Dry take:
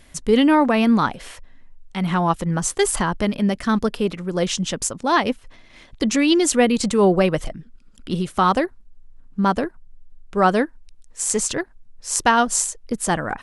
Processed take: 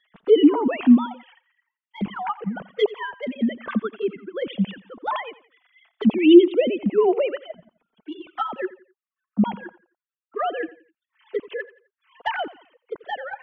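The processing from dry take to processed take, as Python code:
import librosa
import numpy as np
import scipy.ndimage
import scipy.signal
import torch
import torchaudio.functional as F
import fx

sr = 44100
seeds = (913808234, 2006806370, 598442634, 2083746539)

y = fx.sine_speech(x, sr)
y = fx.env_flanger(y, sr, rest_ms=4.8, full_db=-14.5)
y = fx.echo_feedback(y, sr, ms=86, feedback_pct=35, wet_db=-18.0)
y = y * librosa.db_to_amplitude(-1.0)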